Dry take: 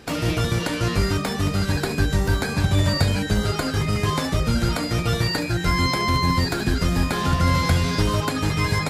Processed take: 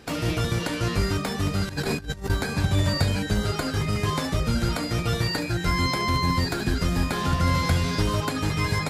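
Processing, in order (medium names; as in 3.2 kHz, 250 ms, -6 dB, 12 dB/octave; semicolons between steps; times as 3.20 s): 1.69–2.30 s: compressor with a negative ratio -26 dBFS, ratio -0.5; trim -3 dB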